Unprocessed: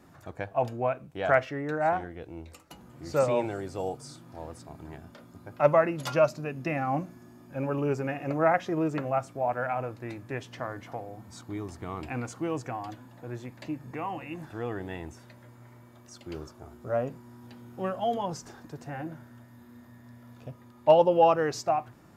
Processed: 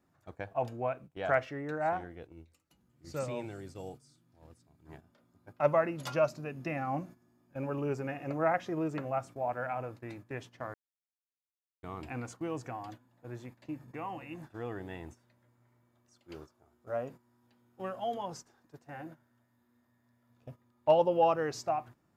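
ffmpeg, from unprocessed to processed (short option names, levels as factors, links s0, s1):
-filter_complex "[0:a]asettb=1/sr,asplit=3[s0][s1][s2];[s0]atrim=end=2.324[s3];[s1]atrim=start=2.32:end=4.86,asetpts=PTS-STARTPTS,afade=t=in:d=0.004:c=qsin,afade=t=out:st=2.536:d=0.004:c=qsin,equalizer=f=770:t=o:w=2.2:g=-8.5[s4];[s2]atrim=start=4.856[s5];[s3][s4]acrossfade=d=0.004:c1=hsin:c2=qsin[s6];[s6][s5]acrossfade=d=0.004:c1=qsin:c2=hsin,asettb=1/sr,asplit=3[s7][s8][s9];[s7]atrim=end=16.194[s10];[s8]atrim=start=16.19:end=20.3,asetpts=PTS-STARTPTS,afade=t=in:d=0.004:c=qsin,afade=t=out:st=4.106:d=0.004:c=qsin,lowshelf=f=280:g=-6[s11];[s9]atrim=start=20.296[s12];[s10][s11]acrossfade=d=0.004:c1=hsin:c2=qsin[s13];[s13][s12]acrossfade=d=0.004:c1=qsin:c2=hsin,asplit=3[s14][s15][s16];[s14]atrim=end=10.74,asetpts=PTS-STARTPTS,afade=t=out:st=10.736:d=0.004:c=hsin[s17];[s15]atrim=start=10.74:end=11.83,asetpts=PTS-STARTPTS,volume=0[s18];[s16]atrim=start=11.83,asetpts=PTS-STARTPTS,afade=t=in:d=0.004:c=hsin[s19];[s17][s18][s19]concat=n=3:v=0:a=1,agate=range=0.251:threshold=0.00794:ratio=16:detection=peak,volume=0.531"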